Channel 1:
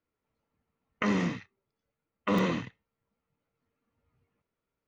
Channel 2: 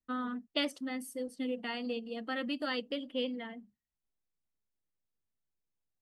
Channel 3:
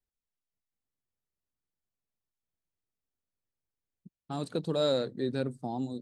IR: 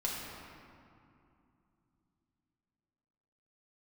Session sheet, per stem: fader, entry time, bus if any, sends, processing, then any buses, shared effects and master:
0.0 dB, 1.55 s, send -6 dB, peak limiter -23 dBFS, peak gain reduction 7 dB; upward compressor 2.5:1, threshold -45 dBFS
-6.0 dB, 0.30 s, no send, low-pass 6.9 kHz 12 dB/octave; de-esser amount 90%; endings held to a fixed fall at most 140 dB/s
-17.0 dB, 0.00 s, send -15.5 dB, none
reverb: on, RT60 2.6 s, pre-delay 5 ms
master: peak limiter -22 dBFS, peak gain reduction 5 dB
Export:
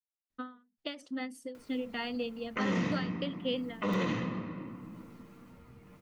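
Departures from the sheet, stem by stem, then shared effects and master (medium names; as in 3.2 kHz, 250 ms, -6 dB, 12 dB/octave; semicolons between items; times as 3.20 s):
stem 2 -6.0 dB -> +1.5 dB; stem 3: muted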